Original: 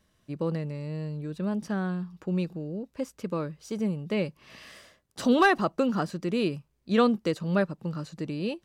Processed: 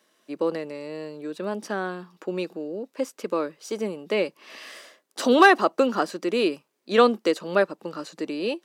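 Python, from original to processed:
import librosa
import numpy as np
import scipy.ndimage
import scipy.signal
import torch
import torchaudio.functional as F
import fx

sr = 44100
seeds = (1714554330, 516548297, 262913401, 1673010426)

y = scipy.signal.sosfilt(scipy.signal.butter(4, 290.0, 'highpass', fs=sr, output='sos'), x)
y = y * 10.0 ** (6.5 / 20.0)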